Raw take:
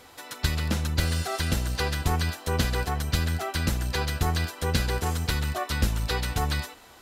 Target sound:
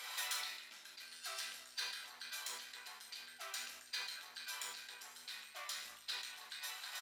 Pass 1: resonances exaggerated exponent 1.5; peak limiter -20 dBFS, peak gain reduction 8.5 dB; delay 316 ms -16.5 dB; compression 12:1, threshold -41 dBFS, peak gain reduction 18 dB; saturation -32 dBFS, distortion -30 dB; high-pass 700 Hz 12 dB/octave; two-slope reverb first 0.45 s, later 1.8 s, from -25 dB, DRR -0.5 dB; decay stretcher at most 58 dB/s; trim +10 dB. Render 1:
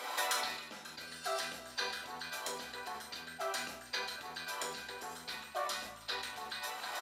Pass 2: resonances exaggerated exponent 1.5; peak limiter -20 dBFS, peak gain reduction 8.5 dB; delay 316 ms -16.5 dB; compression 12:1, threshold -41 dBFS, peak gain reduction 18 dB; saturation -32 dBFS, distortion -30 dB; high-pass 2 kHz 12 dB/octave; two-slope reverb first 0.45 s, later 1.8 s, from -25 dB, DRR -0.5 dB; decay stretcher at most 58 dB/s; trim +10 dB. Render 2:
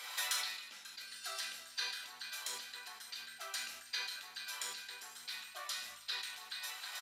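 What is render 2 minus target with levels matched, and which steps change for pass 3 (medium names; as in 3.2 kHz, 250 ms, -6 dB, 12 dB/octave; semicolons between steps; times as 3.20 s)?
saturation: distortion -16 dB
change: saturation -43.5 dBFS, distortion -13 dB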